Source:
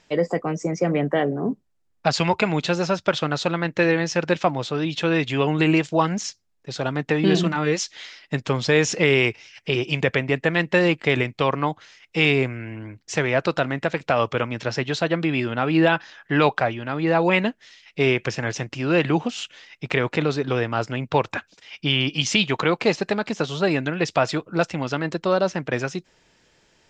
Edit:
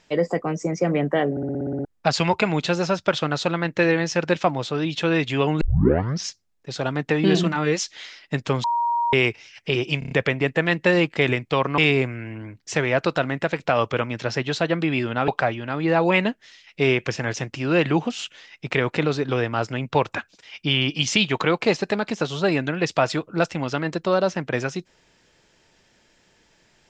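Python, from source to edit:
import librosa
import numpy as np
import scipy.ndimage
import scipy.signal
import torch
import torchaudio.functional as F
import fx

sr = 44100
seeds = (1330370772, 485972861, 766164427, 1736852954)

y = fx.edit(x, sr, fx.stutter_over(start_s=1.31, slice_s=0.06, count=9),
    fx.tape_start(start_s=5.61, length_s=0.67),
    fx.bleep(start_s=8.64, length_s=0.49, hz=944.0, db=-19.0),
    fx.stutter(start_s=9.99, slice_s=0.03, count=5),
    fx.cut(start_s=11.66, length_s=0.53),
    fx.cut(start_s=15.69, length_s=0.78), tone=tone)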